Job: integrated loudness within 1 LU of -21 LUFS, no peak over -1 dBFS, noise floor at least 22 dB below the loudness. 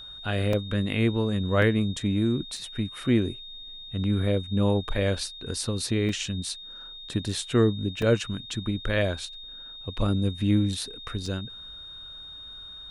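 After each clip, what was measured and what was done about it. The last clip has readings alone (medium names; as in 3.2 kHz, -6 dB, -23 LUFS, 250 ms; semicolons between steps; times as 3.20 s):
dropouts 6; longest dropout 3.0 ms; steady tone 3.7 kHz; tone level -40 dBFS; loudness -27.0 LUFS; peak level -10.0 dBFS; loudness target -21.0 LUFS
-> interpolate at 0.53/1.62/2.57/6.09/8.02/11.26 s, 3 ms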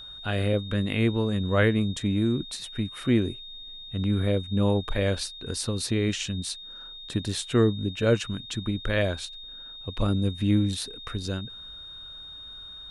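dropouts 0; steady tone 3.7 kHz; tone level -40 dBFS
-> band-stop 3.7 kHz, Q 30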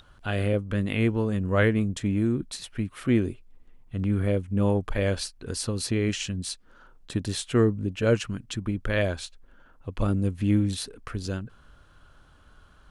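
steady tone not found; loudness -27.0 LUFS; peak level -10.0 dBFS; loudness target -21.0 LUFS
-> trim +6 dB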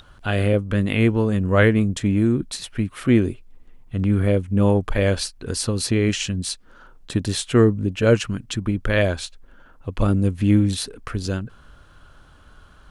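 loudness -21.0 LUFS; peak level -4.0 dBFS; noise floor -50 dBFS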